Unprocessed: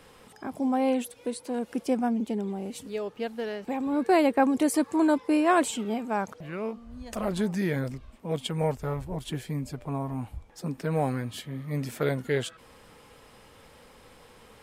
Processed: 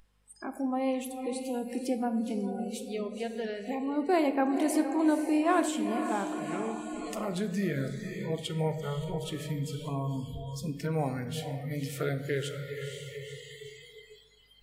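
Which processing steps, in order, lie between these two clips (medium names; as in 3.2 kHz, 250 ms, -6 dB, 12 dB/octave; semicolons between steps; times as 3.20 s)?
echo that smears into a reverb 487 ms, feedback 58%, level -9 dB; in parallel at -1 dB: compression, threshold -33 dBFS, peak gain reduction 15 dB; on the sum: hum 50 Hz, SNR 12 dB; spectral noise reduction 29 dB; on a send at -8 dB: reverberation RT60 0.95 s, pre-delay 3 ms; on the sum: tape noise reduction on one side only encoder only; trim -7 dB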